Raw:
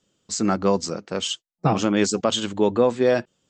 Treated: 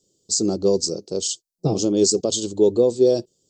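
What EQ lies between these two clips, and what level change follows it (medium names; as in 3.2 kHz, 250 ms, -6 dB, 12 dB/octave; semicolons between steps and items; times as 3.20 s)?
FFT filter 140 Hz 0 dB, 230 Hz -4 dB, 390 Hz +7 dB, 1.9 kHz -30 dB, 4.5 kHz +7 dB; 0.0 dB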